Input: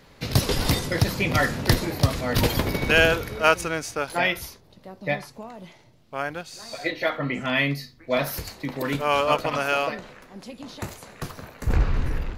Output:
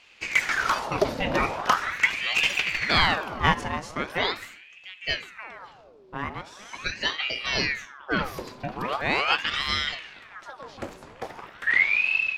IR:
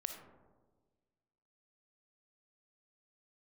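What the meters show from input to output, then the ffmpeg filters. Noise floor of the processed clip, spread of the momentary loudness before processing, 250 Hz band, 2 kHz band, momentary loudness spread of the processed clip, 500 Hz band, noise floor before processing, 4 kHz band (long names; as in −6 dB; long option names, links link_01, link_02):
−51 dBFS, 16 LU, −6.5 dB, +2.0 dB, 20 LU, −7.0 dB, −54 dBFS, +2.0 dB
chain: -filter_complex "[0:a]aemphasis=mode=reproduction:type=50fm,asplit=2[link_01][link_02];[1:a]atrim=start_sample=2205[link_03];[link_02][link_03]afir=irnorm=-1:irlink=0,volume=-6dB[link_04];[link_01][link_04]amix=inputs=2:normalize=0,aeval=exprs='val(0)*sin(2*PI*1500*n/s+1500*0.75/0.41*sin(2*PI*0.41*n/s))':channel_layout=same,volume=-2.5dB"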